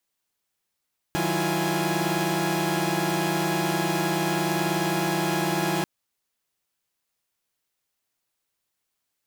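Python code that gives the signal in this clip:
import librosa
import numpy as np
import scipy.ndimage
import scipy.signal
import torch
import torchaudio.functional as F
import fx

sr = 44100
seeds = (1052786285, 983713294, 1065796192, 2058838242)

y = fx.chord(sr, length_s=4.69, notes=(51, 54, 64, 65, 80), wave='saw', level_db=-27.0)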